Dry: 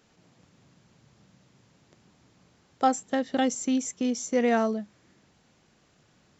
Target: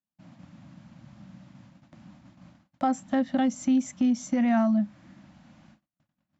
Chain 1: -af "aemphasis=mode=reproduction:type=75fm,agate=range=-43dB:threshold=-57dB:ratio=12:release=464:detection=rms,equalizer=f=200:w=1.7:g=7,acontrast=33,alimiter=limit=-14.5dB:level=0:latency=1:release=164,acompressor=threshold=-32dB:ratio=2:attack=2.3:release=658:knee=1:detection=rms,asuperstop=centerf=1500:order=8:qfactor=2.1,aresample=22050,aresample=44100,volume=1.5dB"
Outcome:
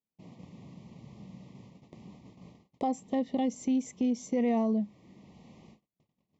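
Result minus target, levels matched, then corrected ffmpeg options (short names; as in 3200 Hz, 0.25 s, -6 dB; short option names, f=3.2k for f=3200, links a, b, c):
2000 Hz band -5.5 dB; compressor: peak gain reduction +5.5 dB
-af "aemphasis=mode=reproduction:type=75fm,agate=range=-43dB:threshold=-57dB:ratio=12:release=464:detection=rms,equalizer=f=200:w=1.7:g=7,acontrast=33,alimiter=limit=-14.5dB:level=0:latency=1:release=164,acompressor=threshold=-21.5dB:ratio=2:attack=2.3:release=658:knee=1:detection=rms,asuperstop=centerf=420:order=8:qfactor=2.1,aresample=22050,aresample=44100,volume=1.5dB"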